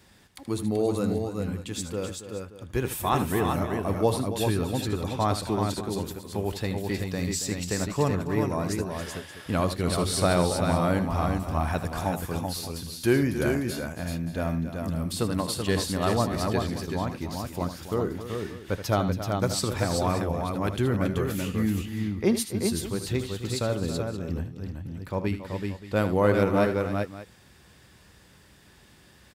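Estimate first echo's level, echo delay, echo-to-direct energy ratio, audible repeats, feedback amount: -11.5 dB, 78 ms, -3.0 dB, 4, no regular repeats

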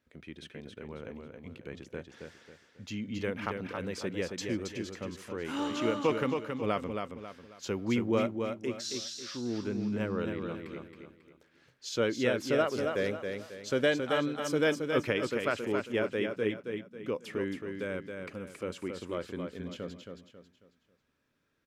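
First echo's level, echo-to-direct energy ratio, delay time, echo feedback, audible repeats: -5.5 dB, -5.0 dB, 272 ms, 36%, 4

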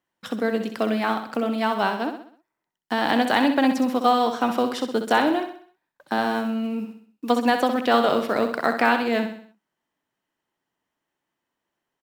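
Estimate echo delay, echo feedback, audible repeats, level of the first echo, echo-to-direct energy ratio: 64 ms, 45%, 4, -8.0 dB, -7.0 dB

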